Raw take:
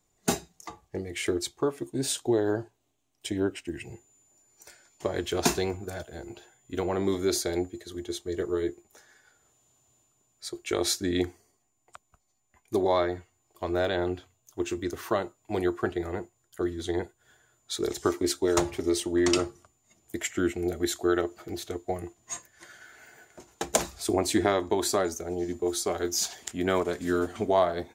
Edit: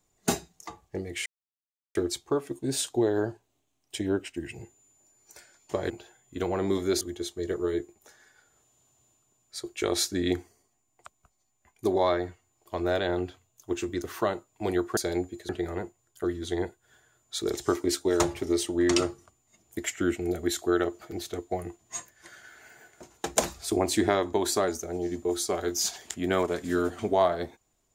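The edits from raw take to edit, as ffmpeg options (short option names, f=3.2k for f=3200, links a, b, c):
-filter_complex "[0:a]asplit=6[a][b][c][d][e][f];[a]atrim=end=1.26,asetpts=PTS-STARTPTS,afade=t=out:st=1.256:d=0.004:c=hsin,apad=pad_dur=0.69[g];[b]atrim=start=1.26:end=5.212,asetpts=PTS-STARTPTS,afade=t=in:d=0.004:c=hsin[h];[c]atrim=start=6.268:end=7.382[i];[d]atrim=start=7.898:end=15.862[j];[e]atrim=start=7.378:end=7.902[k];[f]atrim=start=15.858[l];[g][h]concat=n=2:v=0:a=1[m];[m][i]acrossfade=d=0.004:c1=hsin:c2=hsin[n];[n][j]acrossfade=d=0.004:c1=hsin:c2=hsin[o];[o][k]acrossfade=d=0.004:c1=hsin:c2=hsin[p];[p][l]acrossfade=d=0.004:c1=hsin:c2=hsin"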